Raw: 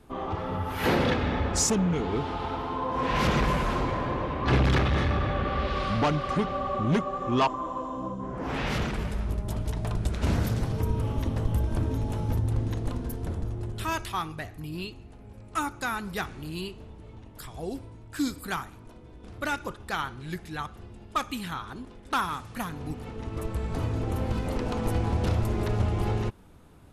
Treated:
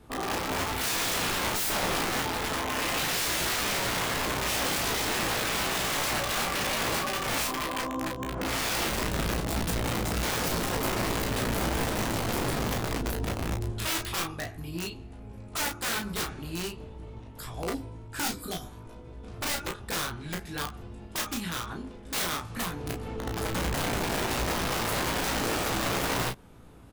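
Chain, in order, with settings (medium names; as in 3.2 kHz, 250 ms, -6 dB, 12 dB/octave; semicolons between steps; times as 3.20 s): dynamic bell 150 Hz, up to -3 dB, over -41 dBFS, Q 1.3; spectral replace 18.47–18.75 s, 780–3000 Hz; integer overflow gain 26 dB; on a send: early reflections 18 ms -5.5 dB, 34 ms -5 dB, 49 ms -13.5 dB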